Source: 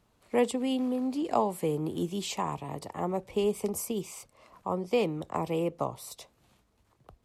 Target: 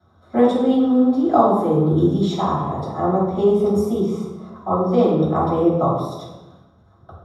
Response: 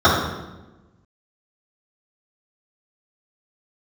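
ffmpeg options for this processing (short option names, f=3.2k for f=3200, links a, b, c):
-filter_complex "[1:a]atrim=start_sample=2205[a];[0:a][a]afir=irnorm=-1:irlink=0,volume=-15.5dB"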